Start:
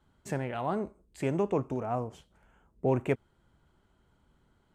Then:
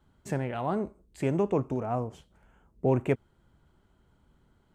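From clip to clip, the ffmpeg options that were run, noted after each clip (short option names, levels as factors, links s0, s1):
-af "lowshelf=f=450:g=3.5"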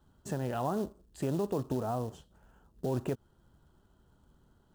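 -af "acrusher=bits=5:mode=log:mix=0:aa=0.000001,equalizer=f=2200:t=o:w=0.34:g=-14.5,alimiter=limit=0.0708:level=0:latency=1:release=139"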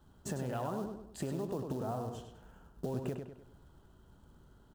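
-filter_complex "[0:a]acompressor=threshold=0.0126:ratio=6,asplit=2[s0][s1];[s1]adelay=100,lowpass=f=4600:p=1,volume=0.531,asplit=2[s2][s3];[s3]adelay=100,lowpass=f=4600:p=1,volume=0.43,asplit=2[s4][s5];[s5]adelay=100,lowpass=f=4600:p=1,volume=0.43,asplit=2[s6][s7];[s7]adelay=100,lowpass=f=4600:p=1,volume=0.43,asplit=2[s8][s9];[s9]adelay=100,lowpass=f=4600:p=1,volume=0.43[s10];[s2][s4][s6][s8][s10]amix=inputs=5:normalize=0[s11];[s0][s11]amix=inputs=2:normalize=0,volume=1.41"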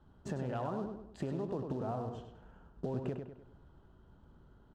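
-af "adynamicsmooth=sensitivity=6.5:basefreq=3500"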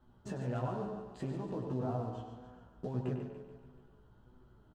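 -filter_complex "[0:a]asplit=2[s0][s1];[s1]aecho=0:1:144|288|432|576|720|864:0.355|0.188|0.0997|0.0528|0.028|0.0148[s2];[s0][s2]amix=inputs=2:normalize=0,flanger=delay=7.9:depth=1.6:regen=44:speed=1.6:shape=sinusoidal,asplit=2[s3][s4];[s4]adelay=16,volume=0.562[s5];[s3][s5]amix=inputs=2:normalize=0,volume=1.19"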